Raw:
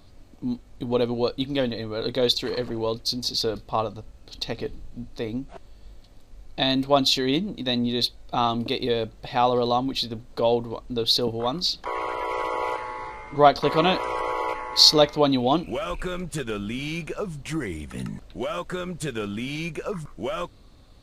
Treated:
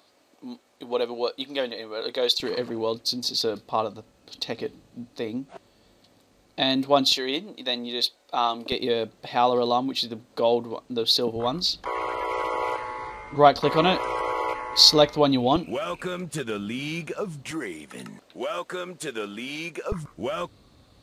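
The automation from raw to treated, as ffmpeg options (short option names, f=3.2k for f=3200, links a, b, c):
-af "asetnsamples=n=441:p=0,asendcmd='2.4 highpass f 170;7.12 highpass f 430;8.72 highpass f 180;11.36 highpass f 42;15.56 highpass f 130;17.51 highpass f 310;19.92 highpass f 75',highpass=450"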